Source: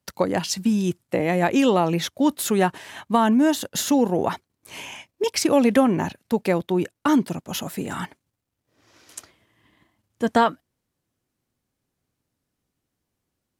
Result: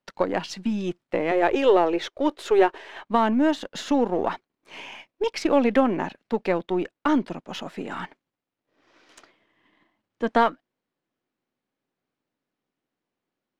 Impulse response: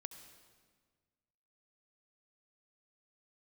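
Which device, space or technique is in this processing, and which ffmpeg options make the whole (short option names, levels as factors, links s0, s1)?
crystal radio: -filter_complex "[0:a]asettb=1/sr,asplit=3[s0][s1][s2];[s0]atrim=end=1.314[s3];[s1]atrim=start=1.31:end=3.04,asetpts=PTS-STARTPTS,afade=t=in:d=0.004:c=qsin,afade=t=out:st=1.726:d=0.004:c=qsin,lowshelf=f=280:t=q:w=3:g=-10.5[s4];[s2]atrim=start=3.036[s5];[s3][s4]acrossfade=d=0.004:c1=hsin:c2=qsin[s6];[s6][s5]acrossfade=d=0.004:c1=qsin:c2=hsin,highpass=240,lowpass=3400,aeval=exprs='if(lt(val(0),0),0.708*val(0),val(0))':c=same"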